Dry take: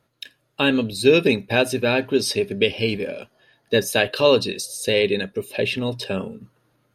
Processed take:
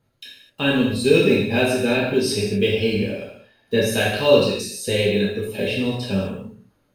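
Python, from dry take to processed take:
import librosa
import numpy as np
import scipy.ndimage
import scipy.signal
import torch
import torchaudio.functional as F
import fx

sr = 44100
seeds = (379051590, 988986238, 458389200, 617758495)

y = fx.block_float(x, sr, bits=7)
y = fx.low_shelf(y, sr, hz=180.0, db=11.0)
y = fx.rev_gated(y, sr, seeds[0], gate_ms=280, shape='falling', drr_db=-6.0)
y = y * librosa.db_to_amplitude(-8.0)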